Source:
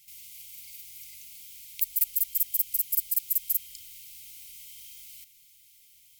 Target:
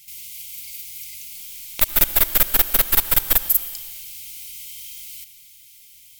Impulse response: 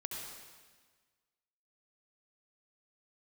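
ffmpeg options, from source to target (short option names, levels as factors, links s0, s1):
-filter_complex "[0:a]asettb=1/sr,asplit=3[s0][s1][s2];[s0]atrim=end=1.364[s3];[s1]atrim=start=1.36:end=3.37,asetpts=PTS-STARTPTS,afade=t=in:d=0.004:c=qsin,afade=t=out:st=2.006:d=0.004:c=qsin,aeval=exprs='0.355*(cos(1*acos(clip(val(0)/0.355,-1,1)))-cos(1*PI/2))+0.0794*(cos(6*acos(clip(val(0)/0.355,-1,1)))-cos(6*PI/2))':c=same[s4];[s2]atrim=start=3.366[s5];[s3][s4]acrossfade=d=0.004:c1=hsin:c2=qsin[s6];[s6][s5]acrossfade=d=0.004:c1=qsin:c2=hsin,asoftclip=type=tanh:threshold=0.251,asplit=2[s7][s8];[1:a]atrim=start_sample=2205,asetrate=41895,aresample=44100[s9];[s8][s9]afir=irnorm=-1:irlink=0,volume=0.335[s10];[s7][s10]amix=inputs=2:normalize=0,volume=2.51"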